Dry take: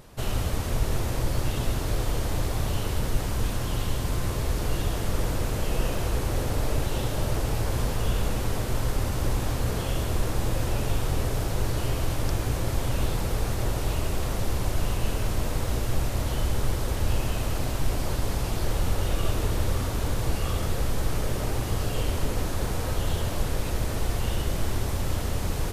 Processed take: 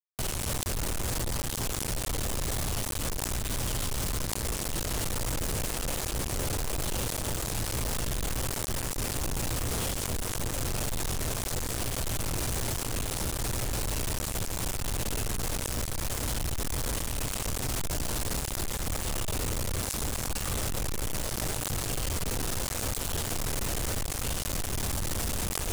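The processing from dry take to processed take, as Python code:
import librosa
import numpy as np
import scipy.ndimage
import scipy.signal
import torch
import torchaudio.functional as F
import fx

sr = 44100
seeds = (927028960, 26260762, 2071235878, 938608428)

p1 = fx.step_gate(x, sr, bpm=159, pattern='..x..x.xxxxxxxx', floor_db=-12.0, edge_ms=4.5)
p2 = fx.quant_dither(p1, sr, seeds[0], bits=6, dither='none')
p3 = fx.peak_eq(p2, sr, hz=8600.0, db=6.5, octaves=1.3)
p4 = np.clip(p3, -10.0 ** (-38.0 / 20.0), 10.0 ** (-38.0 / 20.0))
p5 = fx.over_compress(p4, sr, threshold_db=-52.0, ratio=-1.0)
p6 = p4 + (p5 * librosa.db_to_amplitude(0.0))
y = p6 * librosa.db_to_amplitude(7.5)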